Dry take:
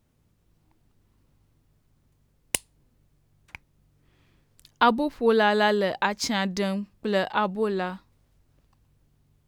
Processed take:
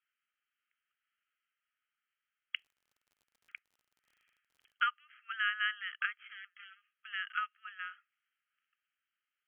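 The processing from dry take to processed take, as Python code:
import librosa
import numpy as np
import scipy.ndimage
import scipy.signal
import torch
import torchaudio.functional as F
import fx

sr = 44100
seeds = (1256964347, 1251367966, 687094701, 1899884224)

y = fx.tube_stage(x, sr, drive_db=32.0, bias=0.55, at=(6.15, 6.94))
y = fx.brickwall_bandpass(y, sr, low_hz=1200.0, high_hz=3300.0)
y = fx.dmg_crackle(y, sr, seeds[0], per_s=49.0, level_db=-51.0, at=(2.55, 4.9), fade=0.02)
y = F.gain(torch.from_numpy(y), -5.5).numpy()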